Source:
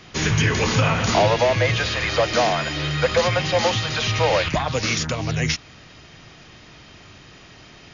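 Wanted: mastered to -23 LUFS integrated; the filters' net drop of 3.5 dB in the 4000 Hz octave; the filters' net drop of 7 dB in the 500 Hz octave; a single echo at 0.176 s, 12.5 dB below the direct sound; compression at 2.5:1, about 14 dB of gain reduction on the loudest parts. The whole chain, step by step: bell 500 Hz -8.5 dB; bell 4000 Hz -4.5 dB; compressor 2.5:1, threshold -38 dBFS; echo 0.176 s -12.5 dB; gain +11.5 dB

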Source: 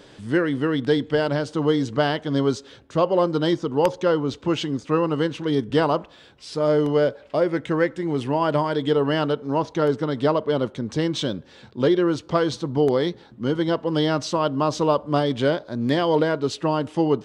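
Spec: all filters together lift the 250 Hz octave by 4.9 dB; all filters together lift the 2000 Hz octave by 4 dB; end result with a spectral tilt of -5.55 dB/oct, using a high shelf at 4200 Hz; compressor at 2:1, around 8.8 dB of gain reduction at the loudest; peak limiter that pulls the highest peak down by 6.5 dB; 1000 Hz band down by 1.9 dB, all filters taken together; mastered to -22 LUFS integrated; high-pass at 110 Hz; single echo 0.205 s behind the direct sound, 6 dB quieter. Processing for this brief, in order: HPF 110 Hz; bell 250 Hz +7 dB; bell 1000 Hz -4.5 dB; bell 2000 Hz +8.5 dB; high shelf 4200 Hz -7 dB; compressor 2:1, threshold -29 dBFS; limiter -19 dBFS; echo 0.205 s -6 dB; gain +6.5 dB

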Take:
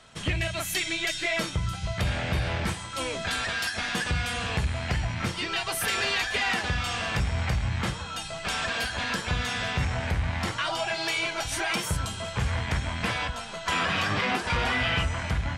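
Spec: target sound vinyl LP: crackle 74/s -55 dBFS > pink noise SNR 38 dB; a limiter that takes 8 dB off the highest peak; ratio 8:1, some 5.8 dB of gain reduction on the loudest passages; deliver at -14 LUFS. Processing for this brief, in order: compressor 8:1, threshold -28 dBFS; limiter -26.5 dBFS; crackle 74/s -55 dBFS; pink noise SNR 38 dB; gain +20.5 dB

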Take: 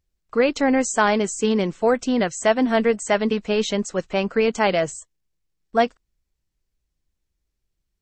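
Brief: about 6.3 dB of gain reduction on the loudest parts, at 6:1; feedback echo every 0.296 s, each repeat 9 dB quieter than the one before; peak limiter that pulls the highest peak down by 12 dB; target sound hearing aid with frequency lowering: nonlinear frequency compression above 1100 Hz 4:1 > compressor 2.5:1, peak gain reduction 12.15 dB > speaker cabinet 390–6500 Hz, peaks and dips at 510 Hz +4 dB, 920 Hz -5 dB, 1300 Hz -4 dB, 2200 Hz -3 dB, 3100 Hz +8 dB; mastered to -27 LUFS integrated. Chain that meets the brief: compressor 6:1, threshold -20 dBFS; limiter -22.5 dBFS; feedback echo 0.296 s, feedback 35%, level -9 dB; nonlinear frequency compression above 1100 Hz 4:1; compressor 2.5:1, threshold -40 dBFS; speaker cabinet 390–6500 Hz, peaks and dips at 510 Hz +4 dB, 920 Hz -5 dB, 1300 Hz -4 dB, 2200 Hz -3 dB, 3100 Hz +8 dB; gain +14 dB

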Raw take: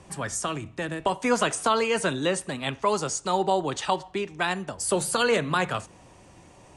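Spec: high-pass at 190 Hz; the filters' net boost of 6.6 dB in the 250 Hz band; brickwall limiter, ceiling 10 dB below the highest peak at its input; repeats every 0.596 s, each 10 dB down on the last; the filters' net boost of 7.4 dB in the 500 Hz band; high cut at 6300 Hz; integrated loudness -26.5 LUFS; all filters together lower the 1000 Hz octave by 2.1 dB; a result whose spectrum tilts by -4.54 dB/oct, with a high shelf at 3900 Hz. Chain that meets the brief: HPF 190 Hz; LPF 6300 Hz; bell 250 Hz +8 dB; bell 500 Hz +8 dB; bell 1000 Hz -5.5 dB; high shelf 3900 Hz -8.5 dB; limiter -14.5 dBFS; feedback echo 0.596 s, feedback 32%, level -10 dB; gain -1 dB

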